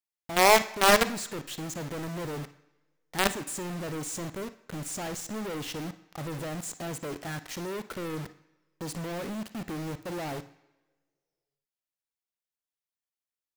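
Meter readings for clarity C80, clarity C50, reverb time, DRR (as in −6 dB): 18.0 dB, 14.0 dB, 1.3 s, 11.5 dB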